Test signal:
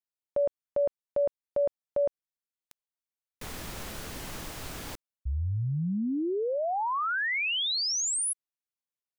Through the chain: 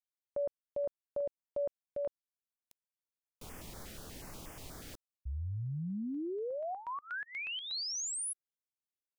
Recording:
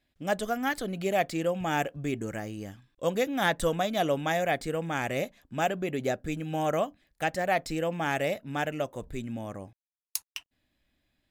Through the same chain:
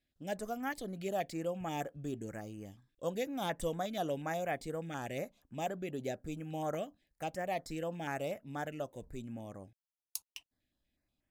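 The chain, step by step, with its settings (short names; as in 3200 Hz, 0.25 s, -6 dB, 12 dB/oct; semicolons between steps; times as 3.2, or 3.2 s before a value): stepped notch 8.3 Hz 990–4000 Hz; gain -8 dB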